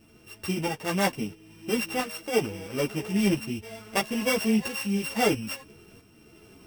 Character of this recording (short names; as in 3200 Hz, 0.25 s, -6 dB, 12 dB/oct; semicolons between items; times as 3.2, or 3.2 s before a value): a buzz of ramps at a fixed pitch in blocks of 16 samples; tremolo saw up 1.5 Hz, depth 55%; a shimmering, thickened sound